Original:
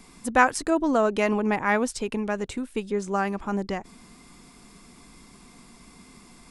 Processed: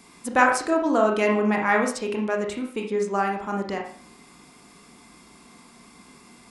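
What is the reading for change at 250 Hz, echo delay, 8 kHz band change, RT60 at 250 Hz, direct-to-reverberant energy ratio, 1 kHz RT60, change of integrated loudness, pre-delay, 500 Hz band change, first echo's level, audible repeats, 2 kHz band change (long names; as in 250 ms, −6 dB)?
+0.5 dB, no echo audible, 0.0 dB, 0.50 s, 1.0 dB, 0.45 s, +2.0 dB, 28 ms, +2.5 dB, no echo audible, no echo audible, +2.0 dB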